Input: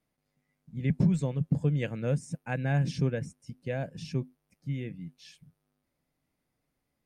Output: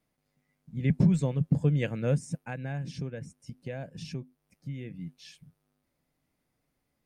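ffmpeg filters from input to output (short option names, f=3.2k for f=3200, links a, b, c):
-filter_complex "[0:a]asplit=3[a][b][c];[a]afade=t=out:st=2.44:d=0.02[d];[b]acompressor=threshold=-39dB:ratio=2.5,afade=t=in:st=2.44:d=0.02,afade=t=out:st=4.94:d=0.02[e];[c]afade=t=in:st=4.94:d=0.02[f];[d][e][f]amix=inputs=3:normalize=0,volume=2dB"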